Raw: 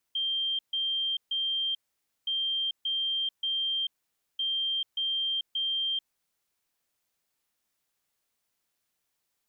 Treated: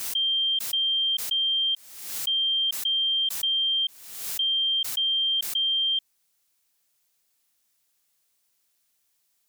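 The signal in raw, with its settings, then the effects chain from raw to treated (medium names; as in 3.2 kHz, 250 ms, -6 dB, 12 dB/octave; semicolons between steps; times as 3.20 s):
beep pattern sine 3.17 kHz, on 0.44 s, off 0.14 s, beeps 3, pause 0.52 s, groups 3, -26.5 dBFS
treble shelf 3 kHz +10 dB; swell ahead of each attack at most 56 dB/s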